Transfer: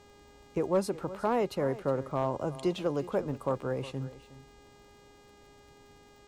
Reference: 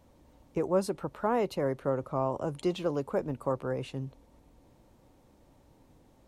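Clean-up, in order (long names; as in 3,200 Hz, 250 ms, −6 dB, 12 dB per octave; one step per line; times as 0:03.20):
clipped peaks rebuilt −19 dBFS
click removal
hum removal 408.9 Hz, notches 20
echo removal 363 ms −16.5 dB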